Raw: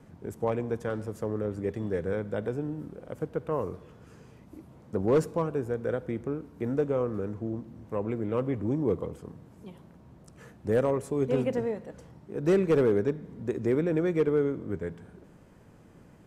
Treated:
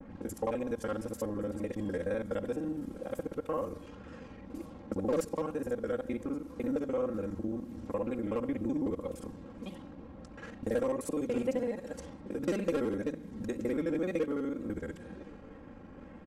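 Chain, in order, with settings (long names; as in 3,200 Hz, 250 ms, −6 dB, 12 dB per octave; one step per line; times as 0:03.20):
reversed piece by piece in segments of 42 ms
downward compressor 2 to 1, threshold −43 dBFS, peak gain reduction 12.5 dB
single-tap delay 1,122 ms −22.5 dB
pitch vibrato 2 Hz 82 cents
comb filter 3.7 ms, depth 69%
low-pass that shuts in the quiet parts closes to 740 Hz, open at −40.5 dBFS
high-shelf EQ 3,700 Hz +8 dB
level +4 dB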